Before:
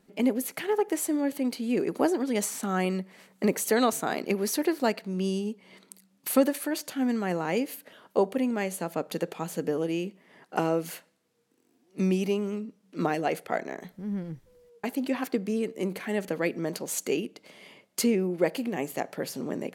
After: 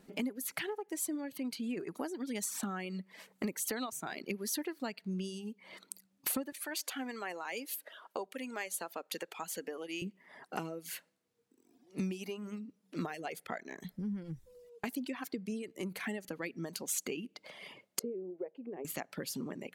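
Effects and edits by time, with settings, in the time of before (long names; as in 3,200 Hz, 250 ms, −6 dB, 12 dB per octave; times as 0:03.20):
0:06.52–0:10.02: high-pass filter 470 Hz
0:17.99–0:18.85: resonant band-pass 450 Hz, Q 3
whole clip: downward compressor 4 to 1, threshold −35 dBFS; dynamic equaliser 550 Hz, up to −7 dB, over −50 dBFS, Q 0.76; reverb reduction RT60 1.4 s; level +3 dB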